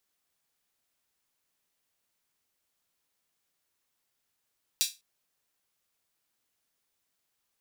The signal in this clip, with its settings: open hi-hat length 0.20 s, high-pass 3800 Hz, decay 0.24 s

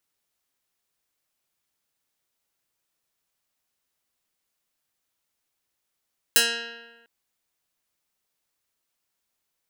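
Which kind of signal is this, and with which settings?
plucked string A#3, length 0.70 s, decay 1.28 s, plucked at 0.2, medium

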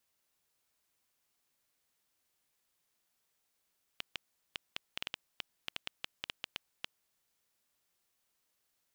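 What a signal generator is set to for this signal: random clicks 5.7/s -18.5 dBFS 3.20 s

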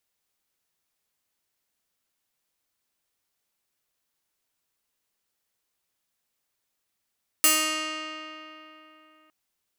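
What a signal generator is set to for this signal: plucked string D#4, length 1.86 s, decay 3.41 s, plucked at 0.39, bright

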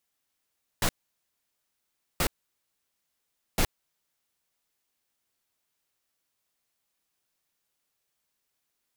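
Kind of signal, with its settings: noise bursts pink, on 0.07 s, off 1.31 s, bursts 3, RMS -24 dBFS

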